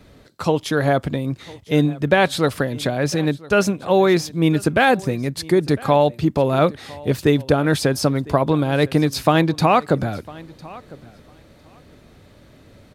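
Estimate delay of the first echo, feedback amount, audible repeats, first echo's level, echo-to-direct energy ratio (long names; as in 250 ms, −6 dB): 1,004 ms, repeats not evenly spaced, 1, −21.5 dB, −21.5 dB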